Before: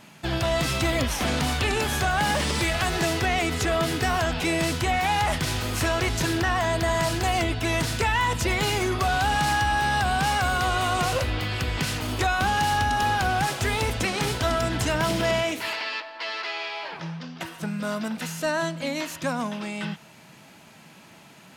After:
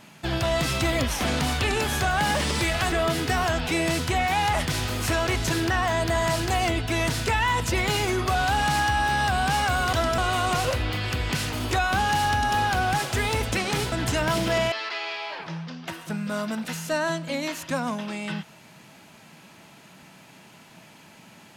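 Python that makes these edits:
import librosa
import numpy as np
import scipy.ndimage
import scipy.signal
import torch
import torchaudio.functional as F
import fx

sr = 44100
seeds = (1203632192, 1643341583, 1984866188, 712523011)

y = fx.edit(x, sr, fx.cut(start_s=2.92, length_s=0.73),
    fx.move(start_s=14.4, length_s=0.25, to_s=10.66),
    fx.cut(start_s=15.45, length_s=0.8), tone=tone)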